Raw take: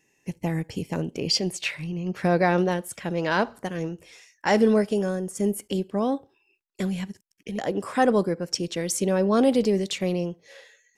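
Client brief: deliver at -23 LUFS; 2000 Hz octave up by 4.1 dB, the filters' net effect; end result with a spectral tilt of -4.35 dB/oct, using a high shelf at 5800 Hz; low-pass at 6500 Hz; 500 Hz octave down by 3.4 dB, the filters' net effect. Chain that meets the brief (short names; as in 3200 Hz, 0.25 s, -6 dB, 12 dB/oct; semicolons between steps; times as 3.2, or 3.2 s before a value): LPF 6500 Hz; bell 500 Hz -4.5 dB; bell 2000 Hz +4.5 dB; high shelf 5800 Hz +9 dB; gain +3 dB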